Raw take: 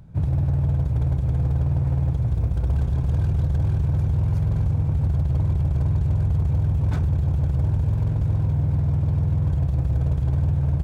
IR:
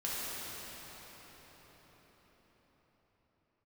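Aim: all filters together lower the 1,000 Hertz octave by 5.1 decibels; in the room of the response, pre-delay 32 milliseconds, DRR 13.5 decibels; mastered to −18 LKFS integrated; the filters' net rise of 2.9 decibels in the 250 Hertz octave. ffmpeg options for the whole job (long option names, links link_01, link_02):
-filter_complex "[0:a]equalizer=frequency=250:width_type=o:gain=7,equalizer=frequency=1000:width_type=o:gain=-7.5,asplit=2[link_01][link_02];[1:a]atrim=start_sample=2205,adelay=32[link_03];[link_02][link_03]afir=irnorm=-1:irlink=0,volume=-19.5dB[link_04];[link_01][link_04]amix=inputs=2:normalize=0,volume=3.5dB"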